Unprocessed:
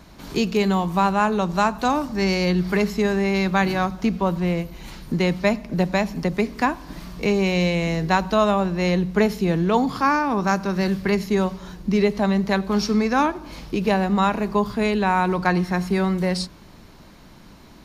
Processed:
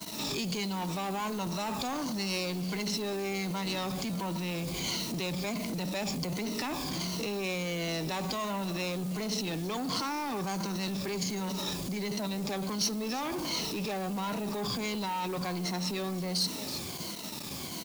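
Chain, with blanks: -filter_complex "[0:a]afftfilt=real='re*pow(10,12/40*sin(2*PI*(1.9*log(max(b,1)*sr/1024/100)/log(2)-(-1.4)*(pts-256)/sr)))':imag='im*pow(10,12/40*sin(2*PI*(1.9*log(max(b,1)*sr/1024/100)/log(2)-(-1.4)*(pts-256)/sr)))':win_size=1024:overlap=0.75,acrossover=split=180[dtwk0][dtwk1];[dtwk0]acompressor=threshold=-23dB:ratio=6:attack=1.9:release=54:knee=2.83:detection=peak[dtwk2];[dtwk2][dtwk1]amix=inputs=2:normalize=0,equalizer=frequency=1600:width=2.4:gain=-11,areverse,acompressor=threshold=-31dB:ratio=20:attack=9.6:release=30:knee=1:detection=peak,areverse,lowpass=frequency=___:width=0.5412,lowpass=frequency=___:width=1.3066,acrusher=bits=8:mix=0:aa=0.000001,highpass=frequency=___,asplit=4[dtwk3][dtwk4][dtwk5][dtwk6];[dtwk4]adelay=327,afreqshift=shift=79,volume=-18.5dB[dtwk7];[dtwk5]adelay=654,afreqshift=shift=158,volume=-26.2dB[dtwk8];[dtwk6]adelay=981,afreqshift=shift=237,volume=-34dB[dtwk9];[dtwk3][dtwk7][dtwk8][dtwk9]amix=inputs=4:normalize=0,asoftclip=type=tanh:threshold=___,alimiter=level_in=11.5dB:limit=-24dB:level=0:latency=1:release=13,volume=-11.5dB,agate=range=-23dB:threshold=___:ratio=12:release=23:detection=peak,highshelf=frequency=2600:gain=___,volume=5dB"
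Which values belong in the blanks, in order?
7100, 7100, 120, -30dB, -53dB, 12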